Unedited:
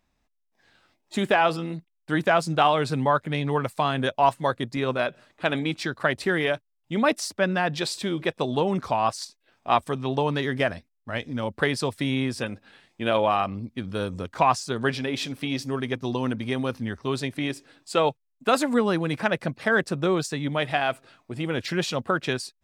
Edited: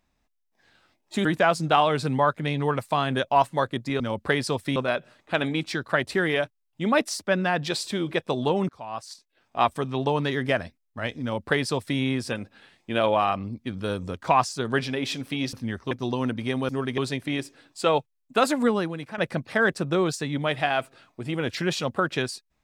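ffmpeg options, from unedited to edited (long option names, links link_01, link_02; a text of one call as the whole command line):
ffmpeg -i in.wav -filter_complex "[0:a]asplit=10[link_01][link_02][link_03][link_04][link_05][link_06][link_07][link_08][link_09][link_10];[link_01]atrim=end=1.252[link_11];[link_02]atrim=start=2.118:end=4.872[link_12];[link_03]atrim=start=11.328:end=12.092[link_13];[link_04]atrim=start=4.868:end=8.8,asetpts=PTS-STARTPTS,afade=type=out:start_time=3.928:duration=0.004:curve=hsin:silence=0.0668344[link_14];[link_05]atrim=start=8.8:end=15.642,asetpts=PTS-STARTPTS,afade=type=in:duration=1.01:silence=0.0668344[link_15];[link_06]atrim=start=16.708:end=17.092[link_16];[link_07]atrim=start=15.928:end=16.712[link_17];[link_08]atrim=start=15.638:end=15.932[link_18];[link_09]atrim=start=17.088:end=19.29,asetpts=PTS-STARTPTS,afade=type=out:start_time=1.732:duration=0.47:curve=qua:silence=0.281838[link_19];[link_10]atrim=start=19.29,asetpts=PTS-STARTPTS,afade=type=in:duration=0.004:curve=hsin:silence=0.281838[link_20];[link_11][link_12]acrossfade=duration=0.004:curve1=hsin:curve2=hsin[link_21];[link_21][link_13]acrossfade=duration=0.004:curve1=hsin:curve2=hsin[link_22];[link_14][link_15]concat=n=2:v=0:a=1[link_23];[link_22][link_23]acrossfade=duration=0.004:curve1=hsin:curve2=hsin[link_24];[link_24][link_16]acrossfade=duration=0.004:curve1=hsin:curve2=hsin[link_25];[link_25][link_17]acrossfade=duration=0.004:curve1=hsin:curve2=hsin[link_26];[link_26][link_18]acrossfade=duration=0.004:curve1=hsin:curve2=hsin[link_27];[link_19][link_20]concat=n=2:v=0:a=1[link_28];[link_27][link_28]acrossfade=duration=0.004:curve1=hsin:curve2=hsin" out.wav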